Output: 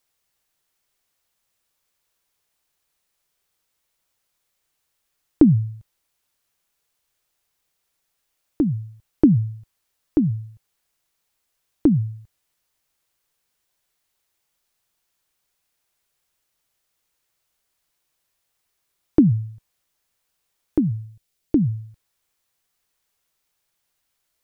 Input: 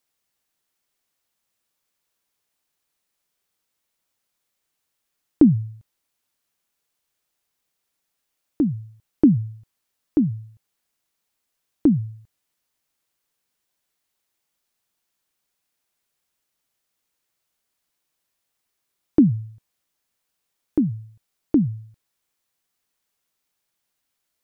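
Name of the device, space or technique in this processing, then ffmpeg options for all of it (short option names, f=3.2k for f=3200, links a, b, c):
low shelf boost with a cut just above: -filter_complex "[0:a]lowshelf=f=72:g=6,equalizer=f=240:t=o:w=0.72:g=-5,asettb=1/sr,asplit=3[a][b][c];[a]atrim=end=21.054[d];[b]atrim=start=21.05:end=21.72,asetpts=PTS-STARTPTS,afade=t=in:d=0.004:c=qsin,afade=t=out:st=0.666:d=0.004:c=qsin,equalizer=f=1.1k:t=o:w=1.4:g=-8[e];[c]atrim=start=21.716[f];[d][e]acrossfade=d=0.004:c1=hsin:c2=qsin[g];[g][f]acrossfade=d=0.004:c1=qsin:c2=hsin,volume=3dB"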